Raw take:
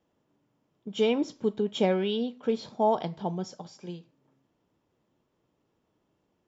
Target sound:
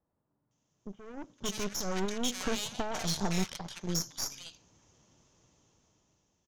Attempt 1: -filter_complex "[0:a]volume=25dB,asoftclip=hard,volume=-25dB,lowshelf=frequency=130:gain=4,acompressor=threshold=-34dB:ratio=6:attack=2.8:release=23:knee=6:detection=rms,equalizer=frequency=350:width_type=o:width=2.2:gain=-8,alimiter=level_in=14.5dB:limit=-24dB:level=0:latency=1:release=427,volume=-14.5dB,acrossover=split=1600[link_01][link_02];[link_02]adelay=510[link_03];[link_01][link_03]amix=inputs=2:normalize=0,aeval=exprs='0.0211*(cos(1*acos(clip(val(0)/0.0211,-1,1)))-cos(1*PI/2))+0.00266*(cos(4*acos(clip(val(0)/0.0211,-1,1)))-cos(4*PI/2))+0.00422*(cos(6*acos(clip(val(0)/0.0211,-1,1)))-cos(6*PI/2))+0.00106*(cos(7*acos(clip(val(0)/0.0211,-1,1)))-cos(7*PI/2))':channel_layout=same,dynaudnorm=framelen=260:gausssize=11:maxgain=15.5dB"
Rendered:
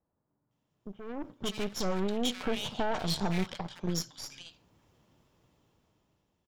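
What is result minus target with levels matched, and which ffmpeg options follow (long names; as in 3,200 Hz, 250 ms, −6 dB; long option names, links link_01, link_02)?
8,000 Hz band −7.0 dB; gain into a clipping stage and back: distortion −4 dB
-filter_complex "[0:a]volume=31dB,asoftclip=hard,volume=-31dB,lowshelf=frequency=130:gain=4,acompressor=threshold=-34dB:ratio=6:attack=2.8:release=23:knee=6:detection=rms,lowpass=frequency=6400:width_type=q:width=7.6,equalizer=frequency=350:width_type=o:width=2.2:gain=-8,alimiter=level_in=14.5dB:limit=-24dB:level=0:latency=1:release=427,volume=-14.5dB,acrossover=split=1600[link_01][link_02];[link_02]adelay=510[link_03];[link_01][link_03]amix=inputs=2:normalize=0,aeval=exprs='0.0211*(cos(1*acos(clip(val(0)/0.0211,-1,1)))-cos(1*PI/2))+0.00266*(cos(4*acos(clip(val(0)/0.0211,-1,1)))-cos(4*PI/2))+0.00422*(cos(6*acos(clip(val(0)/0.0211,-1,1)))-cos(6*PI/2))+0.00106*(cos(7*acos(clip(val(0)/0.0211,-1,1)))-cos(7*PI/2))':channel_layout=same,dynaudnorm=framelen=260:gausssize=11:maxgain=15.5dB"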